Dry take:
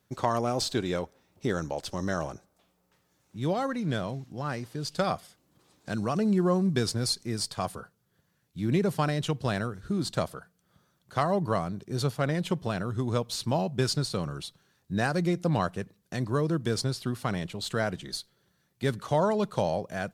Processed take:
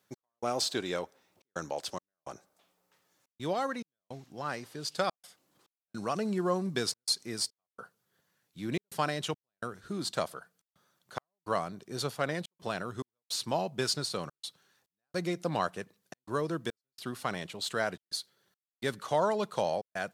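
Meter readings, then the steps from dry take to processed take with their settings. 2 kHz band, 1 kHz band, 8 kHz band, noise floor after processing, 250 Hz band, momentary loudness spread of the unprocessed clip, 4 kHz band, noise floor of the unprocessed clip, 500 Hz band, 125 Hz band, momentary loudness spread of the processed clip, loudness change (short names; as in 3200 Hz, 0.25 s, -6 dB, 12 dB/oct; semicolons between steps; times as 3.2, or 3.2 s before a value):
-2.5 dB, -3.0 dB, -1.0 dB, under -85 dBFS, -8.5 dB, 10 LU, -1.0 dB, -72 dBFS, -4.0 dB, -12.0 dB, 15 LU, -4.5 dB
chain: HPF 490 Hz 6 dB/oct; step gate "x..xxxxxxx.xx" 106 bpm -60 dB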